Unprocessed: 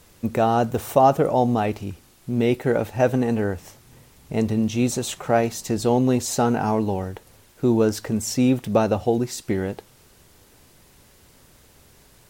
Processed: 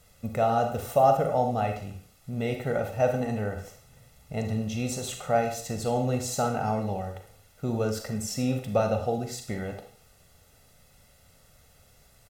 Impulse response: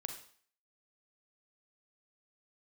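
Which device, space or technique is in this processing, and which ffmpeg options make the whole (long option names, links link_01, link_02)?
microphone above a desk: -filter_complex "[0:a]aecho=1:1:1.5:0.67[link_01];[1:a]atrim=start_sample=2205[link_02];[link_01][link_02]afir=irnorm=-1:irlink=0,volume=-5.5dB"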